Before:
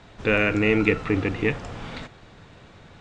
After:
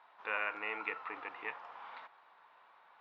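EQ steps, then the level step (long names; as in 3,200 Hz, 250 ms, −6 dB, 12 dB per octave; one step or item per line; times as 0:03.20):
resonant band-pass 960 Hz, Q 3.4
high-frequency loss of the air 300 metres
first difference
+15.5 dB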